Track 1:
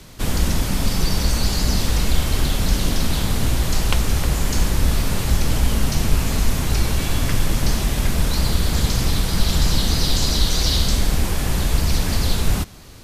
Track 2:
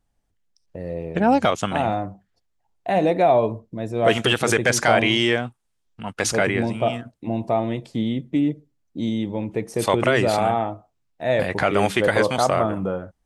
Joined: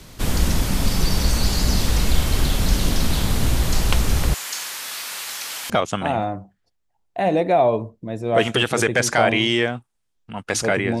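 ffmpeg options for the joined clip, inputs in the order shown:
ffmpeg -i cue0.wav -i cue1.wav -filter_complex "[0:a]asettb=1/sr,asplit=3[link_01][link_02][link_03];[link_01]atrim=end=4.344[link_04];[link_02]atrim=start=4.34:end=5.7,asetpts=PTS-STARTPTS,afade=type=in:duration=0.004:curve=qsin,afade=type=out:start_time=1.356:duration=0.004:curve=qsin,highpass=1300[link_05];[link_03]atrim=start=5.696[link_06];[link_04][link_05]acrossfade=duration=0.004:curve1=hsin:curve2=qsin[link_07];[link_07][link_06]acrossfade=duration=0.004:curve1=qsin:curve2=hsin,apad=whole_dur=11,atrim=end=11,atrim=end=5.702[link_08];[1:a]atrim=start=1.398:end=6.7[link_09];[link_08][link_09]acrossfade=duration=0.004:curve1=hsin:curve2=hsin" out.wav

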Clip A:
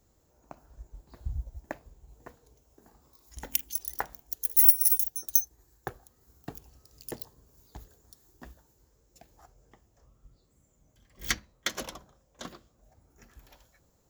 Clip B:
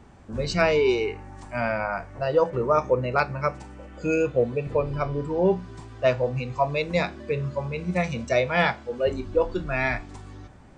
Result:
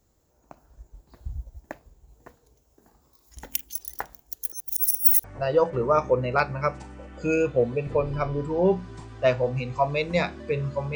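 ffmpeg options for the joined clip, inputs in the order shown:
ffmpeg -i cue0.wav -i cue1.wav -filter_complex "[0:a]apad=whole_dur=10.95,atrim=end=10.95,asplit=2[link_01][link_02];[link_01]atrim=end=4.522[link_03];[link_02]atrim=start=4.518:end=5.242,asetpts=PTS-STARTPTS,areverse[link_04];[1:a]atrim=start=2.038:end=7.75[link_05];[link_03][link_04]acrossfade=duration=0.004:curve1=hsin:curve2=hsin[link_06];[link_06][link_05]acrossfade=duration=0.004:curve1=hsin:curve2=hsin" out.wav

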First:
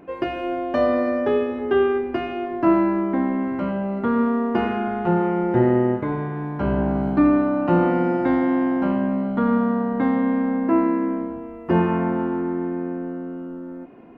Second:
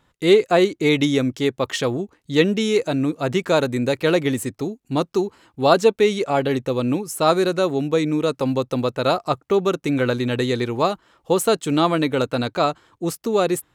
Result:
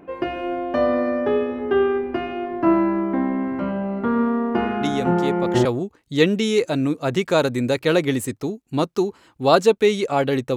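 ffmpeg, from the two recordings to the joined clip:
ffmpeg -i cue0.wav -i cue1.wav -filter_complex "[1:a]asplit=2[link_01][link_02];[0:a]apad=whole_dur=10.56,atrim=end=10.56,atrim=end=5.652[link_03];[link_02]atrim=start=1.828:end=6.74[link_04];[link_01]atrim=start=0.99:end=1.83,asetpts=PTS-STARTPTS,volume=-6dB,afade=type=in:duration=0.004:curve=hsin,afade=type=out:start_time=0.836:duration=0.004:curve=hsin,adelay=212121S[link_05];[link_03][link_04]acrossfade=duration=0.004:curve1=hsin:curve2=hsin[link_06];[link_06][link_05]amix=inputs=2:normalize=0" out.wav

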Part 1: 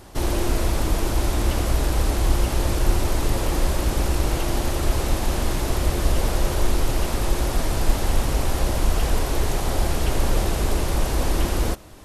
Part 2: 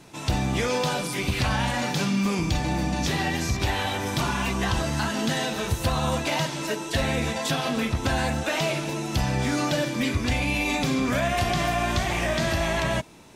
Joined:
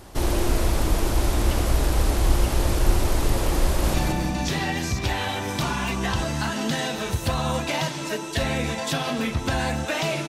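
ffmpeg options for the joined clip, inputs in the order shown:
ffmpeg -i cue0.wav -i cue1.wav -filter_complex "[0:a]apad=whole_dur=10.28,atrim=end=10.28,atrim=end=3.942[link_01];[1:a]atrim=start=2.518:end=8.86[link_02];[link_01][link_02]acrossfade=duration=0.004:curve1=hsin:curve2=hsin,asplit=2[link_03][link_04];[link_04]afade=type=in:start_time=3.65:duration=0.01,afade=type=out:start_time=3.94:duration=0.01,aecho=0:1:180|360|540|720|900|1080:0.707946|0.318576|0.143359|0.0645116|0.0290302|0.0130636[link_05];[link_03][link_05]amix=inputs=2:normalize=0" out.wav

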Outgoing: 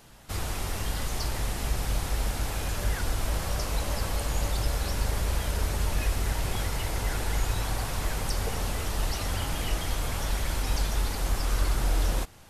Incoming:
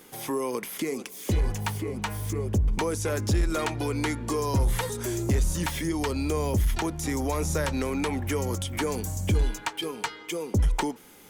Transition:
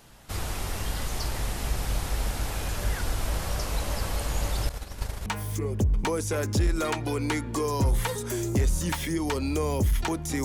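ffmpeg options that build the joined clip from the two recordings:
ffmpeg -i cue0.wav -i cue1.wav -filter_complex "[0:a]asettb=1/sr,asplit=3[link_01][link_02][link_03];[link_01]atrim=end=4.694[link_04];[link_02]atrim=start=4.69:end=5.26,asetpts=PTS-STARTPTS,afade=type=in:duration=0.004:curve=qsin,afade=type=out:start_time=0.566:duration=0.004:curve=qsin,agate=range=-33dB:threshold=-21dB:ratio=3:release=100:detection=peak[link_05];[link_03]atrim=start=5.256[link_06];[link_04][link_05]acrossfade=duration=0.004:curve1=hsin:curve2=qsin[link_07];[link_07][link_06]acrossfade=duration=0.004:curve1=qsin:curve2=hsin,apad=whole_dur=10.44,atrim=end=10.44,atrim=end=5.262[link_08];[1:a]atrim=start=1.998:end=7.18[link_09];[link_08][link_09]acrossfade=duration=0.004:curve1=hsin:curve2=hsin" out.wav

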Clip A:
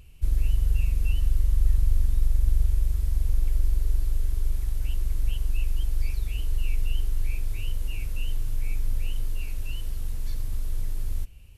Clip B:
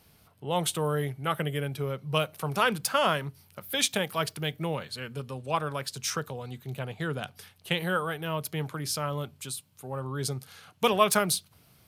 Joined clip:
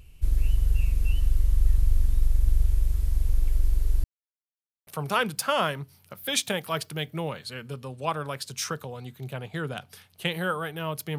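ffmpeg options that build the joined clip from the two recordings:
ffmpeg -i cue0.wav -i cue1.wav -filter_complex "[0:a]apad=whole_dur=11.18,atrim=end=11.18,asplit=2[link_01][link_02];[link_01]atrim=end=4.04,asetpts=PTS-STARTPTS,afade=type=out:start_time=4.036:duration=0.004:curve=hsin[link_03];[link_02]atrim=start=4.04:end=4.87,asetpts=PTS-STARTPTS,volume=0[link_04];[1:a]atrim=start=2.33:end=8.64,asetpts=PTS-STARTPTS,afade=type=in:duration=0.004:curve=hsin[link_05];[link_03][link_04][link_05]concat=n=3:v=0:a=1" out.wav

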